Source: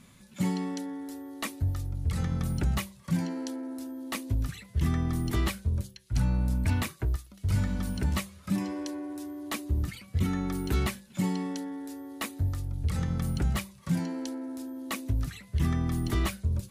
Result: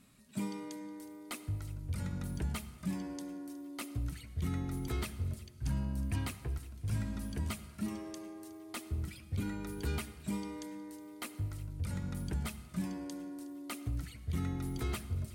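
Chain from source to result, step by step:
parametric band 8,300 Hz +6 dB 0.28 octaves
delay with a high-pass on its return 398 ms, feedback 53%, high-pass 1,700 Hz, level −18.5 dB
on a send at −14 dB: convolution reverb RT60 1.7 s, pre-delay 64 ms
on the sum: wrong playback speed 44.1 kHz file played as 48 kHz
level −8.5 dB

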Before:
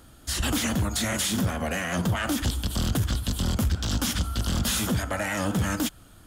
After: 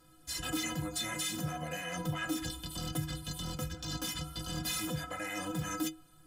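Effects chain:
stiff-string resonator 150 Hz, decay 0.31 s, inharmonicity 0.03
level +3 dB

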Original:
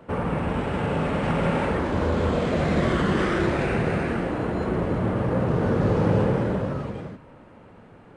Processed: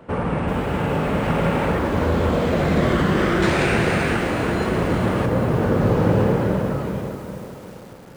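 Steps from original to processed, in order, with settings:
0:03.42–0:05.26: high-shelf EQ 2,000 Hz +11 dB
tape delay 347 ms, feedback 69%, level −14.5 dB, low-pass 1,300 Hz
feedback echo at a low word length 392 ms, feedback 55%, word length 7 bits, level −10 dB
level +3 dB

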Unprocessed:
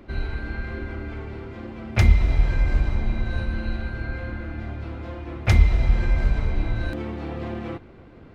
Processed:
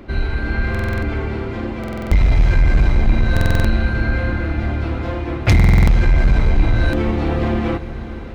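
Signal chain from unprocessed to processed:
automatic gain control gain up to 4 dB
soft clipping −15 dBFS, distortion −9 dB
feedback delay with all-pass diffusion 473 ms, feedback 69%, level −16 dB
buffer that repeats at 0:00.70/0:01.79/0:03.32/0:05.55, samples 2,048, times 6
level +8 dB

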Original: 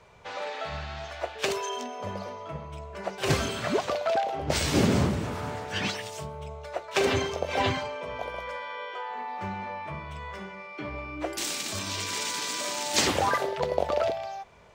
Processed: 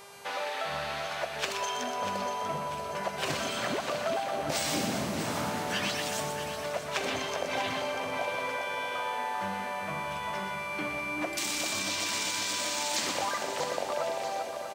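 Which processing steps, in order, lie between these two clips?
high-pass filter 200 Hz 12 dB per octave
parametric band 410 Hz −8 dB 0.45 octaves
downward compressor 6 to 1, threshold −34 dBFS, peak gain reduction 13.5 dB
repeating echo 640 ms, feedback 46%, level −10 dB
hum with harmonics 400 Hz, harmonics 31, −56 dBFS −3 dB per octave
0:04.49–0:06.64: high-shelf EQ 8,000 Hz +7 dB
echo with a time of its own for lows and highs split 1,800 Hz, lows 393 ms, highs 123 ms, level −6.5 dB
level +4 dB

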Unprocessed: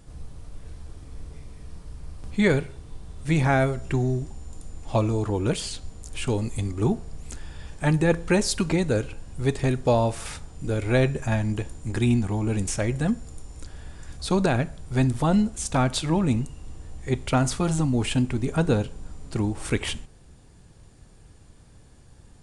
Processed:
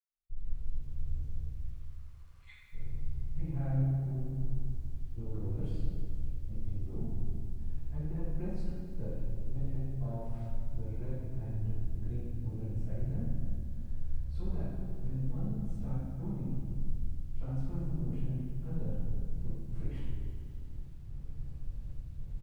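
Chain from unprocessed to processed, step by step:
0:01.55–0:02.64: elliptic high-pass filter 1,100 Hz, stop band 50 dB
spectral tilt −4 dB per octave
automatic gain control gain up to 8 dB
brickwall limiter −12 dBFS, peak gain reduction 11 dB
gate pattern ".xxxxx.xxxx" 68 BPM −60 dB
soft clipping −15 dBFS, distortion −17 dB
slap from a distant wall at 51 metres, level −16 dB
convolution reverb RT60 1.4 s, pre-delay 77 ms
feedback echo at a low word length 82 ms, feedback 80%, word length 10 bits, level −12.5 dB
level −2.5 dB

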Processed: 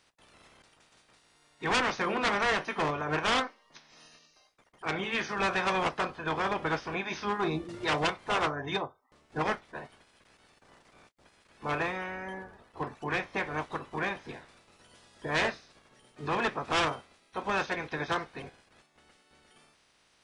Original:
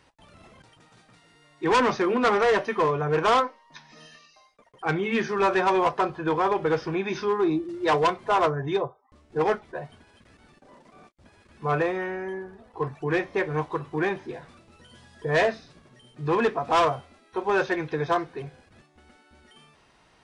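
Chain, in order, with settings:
ceiling on every frequency bin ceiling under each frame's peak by 17 dB
level −6.5 dB

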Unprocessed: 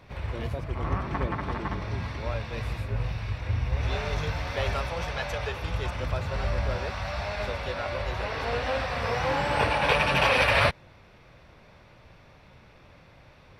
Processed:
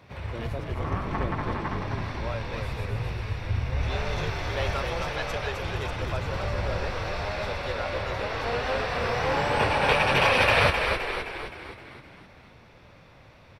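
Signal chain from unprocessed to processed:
high-pass filter 63 Hz 24 dB per octave
echo with shifted repeats 260 ms, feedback 55%, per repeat −45 Hz, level −5 dB

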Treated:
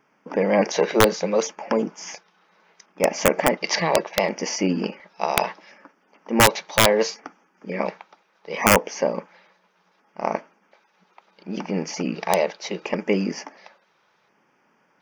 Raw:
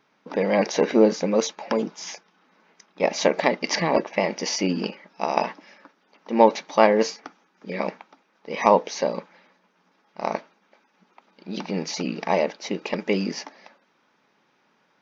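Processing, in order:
wrap-around overflow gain 6.5 dB
auto-filter notch square 0.7 Hz 260–3,900 Hz
level +2 dB

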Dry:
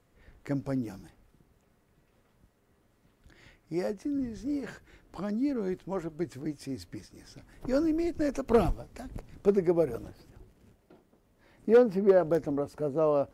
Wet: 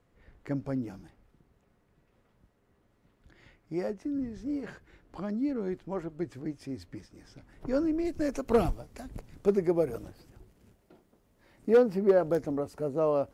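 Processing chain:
high-shelf EQ 5,200 Hz −9 dB, from 0:08.05 +2.5 dB
level −1 dB

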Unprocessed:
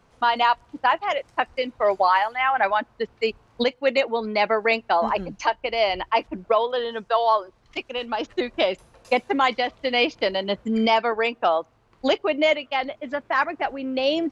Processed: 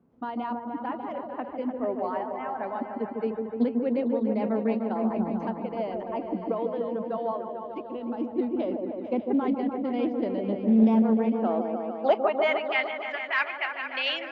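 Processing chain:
band-pass filter sweep 240 Hz → 2,400 Hz, 0:11.32–0:12.88
echo whose low-pass opens from repeat to repeat 149 ms, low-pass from 750 Hz, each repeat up 1 octave, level −3 dB
highs frequency-modulated by the lows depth 0.2 ms
level +4 dB

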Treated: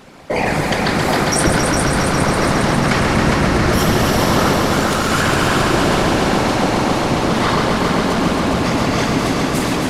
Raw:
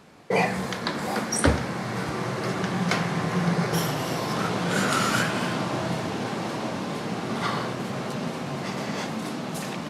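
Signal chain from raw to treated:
random phases in short frames
in parallel at +2.5 dB: compressor whose output falls as the input rises −27 dBFS, ratio −0.5
0:04.53–0:05.10: on the sum: power curve on the samples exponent 1.4
echo machine with several playback heads 136 ms, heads all three, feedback 71%, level −8.5 dB
level +2 dB

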